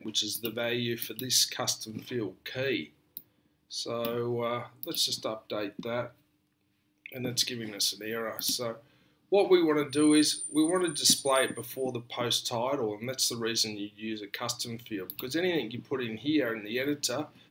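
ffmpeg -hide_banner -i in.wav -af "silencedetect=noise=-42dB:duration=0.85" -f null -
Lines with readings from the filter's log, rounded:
silence_start: 6.08
silence_end: 7.06 | silence_duration: 0.98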